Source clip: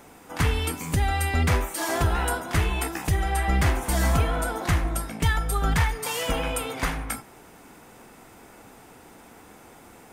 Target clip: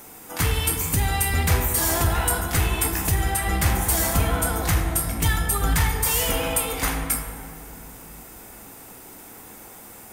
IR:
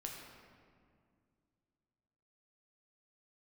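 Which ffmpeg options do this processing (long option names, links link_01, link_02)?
-filter_complex "[0:a]aemphasis=mode=production:type=50fm,asoftclip=type=tanh:threshold=-15dB,asplit=2[link_01][link_02];[1:a]atrim=start_sample=2205,asetrate=32634,aresample=44100[link_03];[link_02][link_03]afir=irnorm=-1:irlink=0,volume=3.5dB[link_04];[link_01][link_04]amix=inputs=2:normalize=0,volume=-5dB"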